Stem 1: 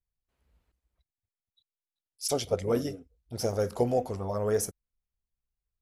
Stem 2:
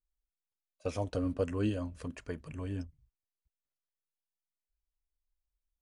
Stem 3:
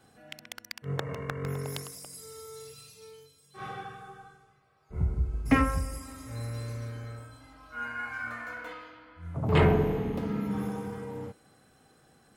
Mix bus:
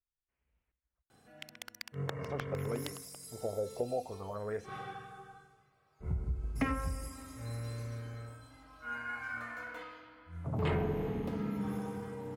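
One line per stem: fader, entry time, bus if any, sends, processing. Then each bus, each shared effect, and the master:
-11.0 dB, 0.00 s, no send, LFO low-pass sine 0.47 Hz 580–2500 Hz
mute
-4.0 dB, 1.10 s, no send, none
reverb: none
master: compression 2.5:1, threshold -31 dBFS, peak gain reduction 7.5 dB

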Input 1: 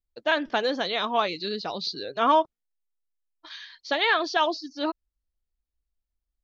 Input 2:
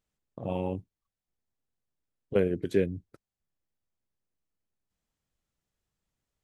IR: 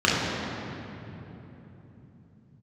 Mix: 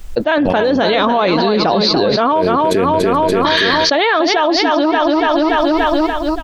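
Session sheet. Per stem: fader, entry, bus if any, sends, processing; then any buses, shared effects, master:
+3.0 dB, 0.00 s, no send, echo send -11 dB, tilt EQ -3.5 dB/octave
-1.0 dB, 0.00 s, no send, echo send -10.5 dB, none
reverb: none
echo: feedback delay 288 ms, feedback 50%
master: bass shelf 260 Hz -7.5 dB; level flattener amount 100%

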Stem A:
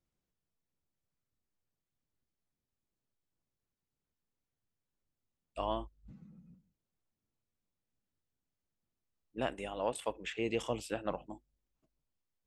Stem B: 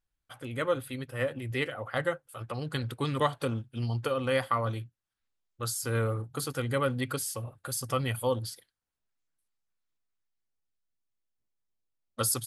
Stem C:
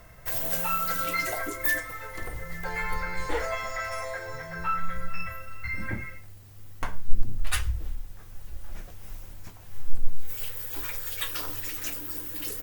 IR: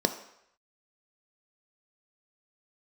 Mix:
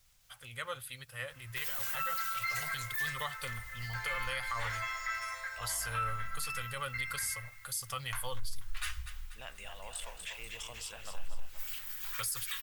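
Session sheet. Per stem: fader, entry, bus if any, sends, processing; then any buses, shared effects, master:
-3.0 dB, 0.00 s, no send, echo send -6.5 dB, level flattener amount 50%
+1.5 dB, 0.00 s, no send, no echo send, none
-7.0 dB, 1.30 s, no send, echo send -17 dB, FFT filter 590 Hz 0 dB, 1.2 kHz +11 dB, 12 kHz +1 dB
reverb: none
echo: feedback delay 242 ms, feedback 45%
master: amplifier tone stack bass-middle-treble 10-0-10; peak limiter -25.5 dBFS, peak gain reduction 11 dB

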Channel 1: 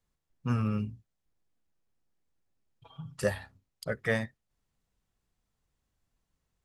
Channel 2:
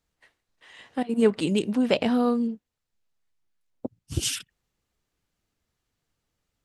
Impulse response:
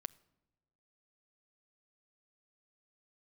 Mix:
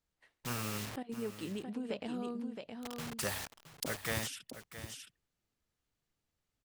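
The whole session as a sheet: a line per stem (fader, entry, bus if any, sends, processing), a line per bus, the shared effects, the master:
-5.0 dB, 0.00 s, send -16.5 dB, echo send -12 dB, bit crusher 8-bit; spectrum-flattening compressor 2:1
-8.0 dB, 0.00 s, no send, echo send -5.5 dB, compression 2.5:1, threshold -34 dBFS, peak gain reduction 13 dB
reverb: on, pre-delay 7 ms
echo: delay 668 ms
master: none

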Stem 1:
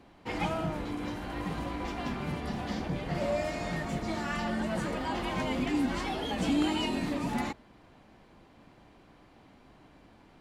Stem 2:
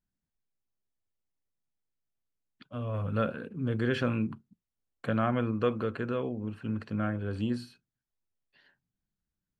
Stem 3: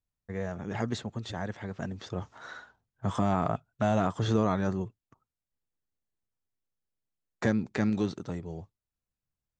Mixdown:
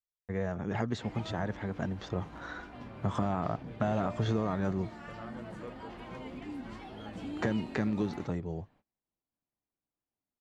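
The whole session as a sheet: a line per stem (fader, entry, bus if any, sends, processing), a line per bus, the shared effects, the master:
-12.5 dB, 0.75 s, no send, none
-18.0 dB, 0.00 s, no send, none
+2.0 dB, 0.00 s, no send, compression 4:1, threshold -29 dBFS, peak gain reduction 7.5 dB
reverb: none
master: gate -60 dBFS, range -27 dB; treble shelf 4.6 kHz -9.5 dB

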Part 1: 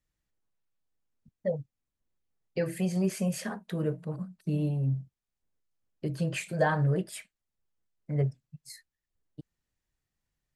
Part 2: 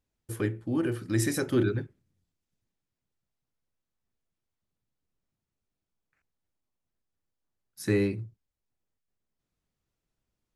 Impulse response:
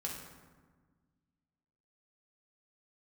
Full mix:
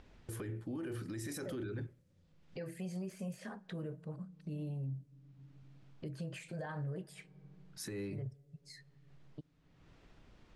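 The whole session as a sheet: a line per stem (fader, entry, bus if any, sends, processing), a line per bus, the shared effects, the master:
-10.5 dB, 0.00 s, send -24 dB, de-esser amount 100%
0.0 dB, 0.00 s, no send, hum notches 60/120 Hz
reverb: on, RT60 1.4 s, pre-delay 3 ms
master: upward compressor, threshold -40 dBFS; level-controlled noise filter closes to 2.8 kHz, open at -37.5 dBFS; peak limiter -34.5 dBFS, peak gain reduction 20.5 dB

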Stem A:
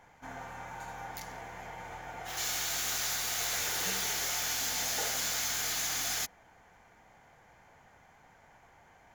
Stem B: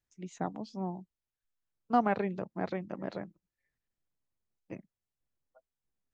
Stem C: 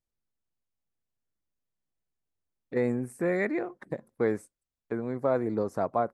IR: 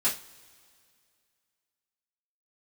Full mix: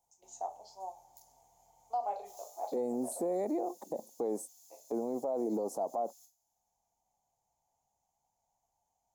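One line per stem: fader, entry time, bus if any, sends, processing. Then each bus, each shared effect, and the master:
-12.0 dB, 0.00 s, send -14.5 dB, amplifier tone stack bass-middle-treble 5-5-5; compression 3:1, threshold -48 dBFS, peak gain reduction 8.5 dB; auto duck -16 dB, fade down 0.30 s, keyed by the third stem
-6.5 dB, 0.00 s, send -7.5 dB, reverb removal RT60 0.8 s; high-pass 620 Hz 24 dB/octave; peaking EQ 800 Hz -4.5 dB 0.77 oct
+2.5 dB, 0.00 s, no send, high-pass 230 Hz 24 dB/octave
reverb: on, pre-delay 3 ms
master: FFT filter 400 Hz 0 dB, 830 Hz +9 dB, 1.6 kHz -27 dB, 6.6 kHz +6 dB; peak limiter -26 dBFS, peak gain reduction 17 dB

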